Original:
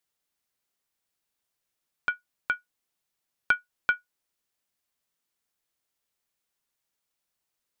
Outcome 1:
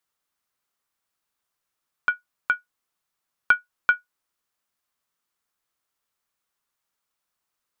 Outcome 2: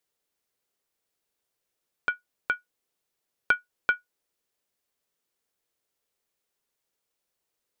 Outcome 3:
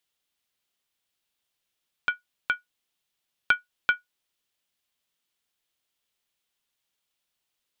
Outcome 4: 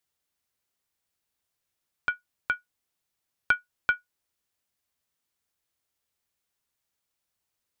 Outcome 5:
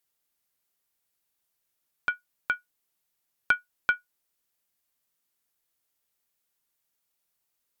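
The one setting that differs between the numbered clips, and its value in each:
bell, frequency: 1200, 450, 3200, 82, 15000 Hz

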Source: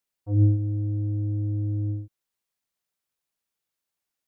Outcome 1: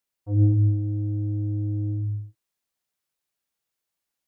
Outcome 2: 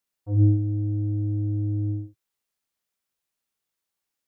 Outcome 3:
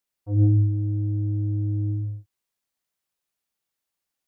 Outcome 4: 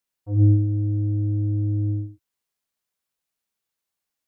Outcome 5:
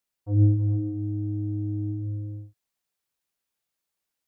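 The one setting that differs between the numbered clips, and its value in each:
non-linear reverb, gate: 280, 80, 190, 120, 470 ms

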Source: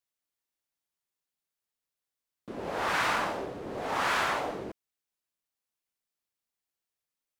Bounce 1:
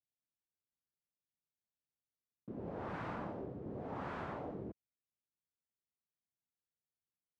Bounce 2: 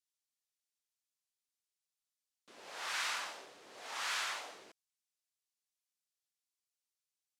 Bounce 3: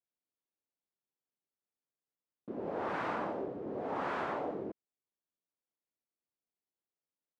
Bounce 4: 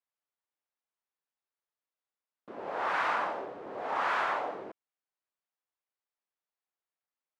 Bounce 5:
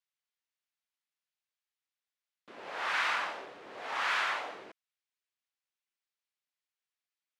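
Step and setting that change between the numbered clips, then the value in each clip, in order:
band-pass, frequency: 120, 6400, 310, 930, 2400 Hz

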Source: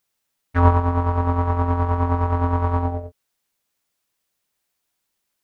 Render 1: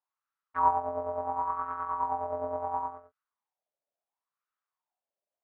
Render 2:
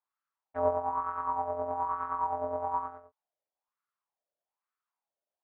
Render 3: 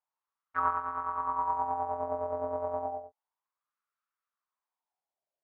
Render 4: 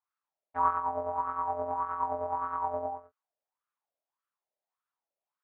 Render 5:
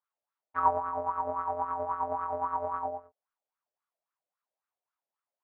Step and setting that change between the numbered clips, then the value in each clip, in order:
wah, rate: 0.72, 1.1, 0.31, 1.7, 3.7 Hz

